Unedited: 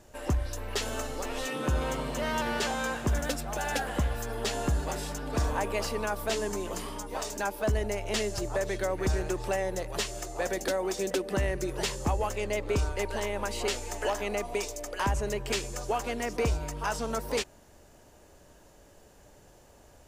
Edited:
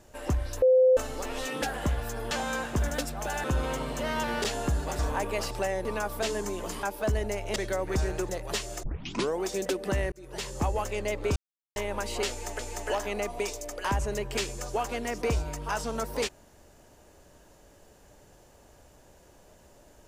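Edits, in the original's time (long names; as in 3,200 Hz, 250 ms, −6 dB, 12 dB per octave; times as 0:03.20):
0:00.62–0:00.97: beep over 514 Hz −16 dBFS
0:01.62–0:02.62: swap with 0:03.75–0:04.44
0:04.99–0:05.40: remove
0:06.90–0:07.43: remove
0:08.16–0:08.67: remove
0:09.40–0:09.74: move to 0:05.92
0:10.28: tape start 0.57 s
0:11.57–0:12.07: fade in
0:12.81–0:13.21: silence
0:13.74–0:14.04: repeat, 2 plays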